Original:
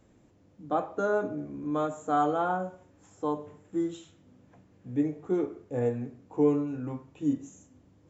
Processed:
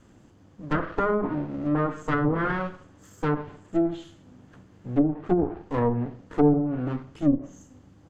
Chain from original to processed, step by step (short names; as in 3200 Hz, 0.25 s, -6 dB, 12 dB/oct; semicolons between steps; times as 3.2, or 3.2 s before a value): minimum comb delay 0.63 ms; feedback echo 68 ms, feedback 50%, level -21 dB; treble ducked by the level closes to 500 Hz, closed at -24 dBFS; gain +7.5 dB